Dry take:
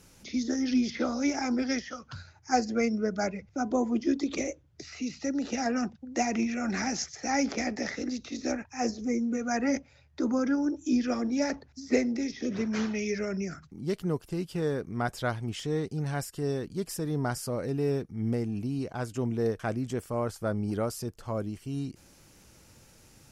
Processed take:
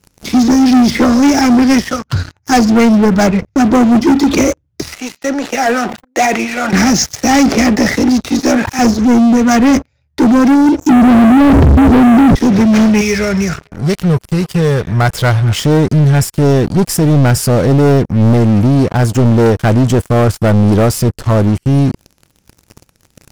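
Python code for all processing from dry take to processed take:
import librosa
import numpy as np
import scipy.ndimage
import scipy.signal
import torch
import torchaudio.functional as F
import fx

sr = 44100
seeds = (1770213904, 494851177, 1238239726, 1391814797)

y = fx.chain(x, sr, fx.highpass(hz=610.0, slope=12),
    fx.peak_eq(hz=5200.0, db=-8.5, octaves=0.88),
    fx.sustainer(db_per_s=93.0), at=(4.94, 6.73))
y = fx.chain(y, sr, fx.highpass(hz=270.0, slope=12),
    fx.sustainer(db_per_s=82.0), at=(8.39, 8.79))
y = fx.chain(y, sr, fx.gaussian_blur(sigma=15.0),
    fx.peak_eq(hz=89.0, db=6.0, octaves=2.6),
    fx.env_flatten(amount_pct=100), at=(10.89, 12.35))
y = fx.chain(y, sr, fx.peak_eq(hz=280.0, db=-14.0, octaves=1.2),
    fx.echo_stepped(ms=112, hz=3000.0, octaves=-0.7, feedback_pct=70, wet_db=-12), at=(13.01, 15.56))
y = fx.highpass(y, sr, hz=45.0, slope=6)
y = fx.low_shelf(y, sr, hz=230.0, db=11.0)
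y = fx.leveller(y, sr, passes=5)
y = y * librosa.db_to_amplitude(2.5)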